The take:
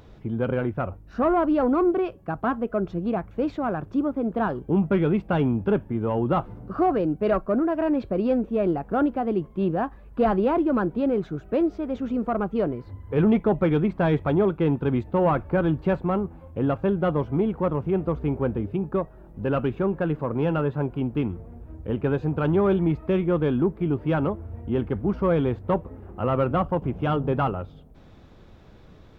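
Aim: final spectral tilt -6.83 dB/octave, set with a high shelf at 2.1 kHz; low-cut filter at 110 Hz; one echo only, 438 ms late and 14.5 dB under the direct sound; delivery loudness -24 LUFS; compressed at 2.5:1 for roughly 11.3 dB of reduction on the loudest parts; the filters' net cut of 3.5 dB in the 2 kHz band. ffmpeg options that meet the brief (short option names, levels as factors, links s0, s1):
-af "highpass=110,equalizer=f=2000:t=o:g=-3,highshelf=f=2100:g=-4,acompressor=threshold=0.0178:ratio=2.5,aecho=1:1:438:0.188,volume=3.55"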